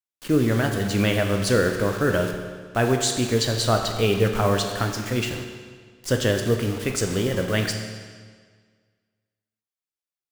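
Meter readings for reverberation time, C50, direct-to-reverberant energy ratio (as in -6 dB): 1.7 s, 5.5 dB, 3.0 dB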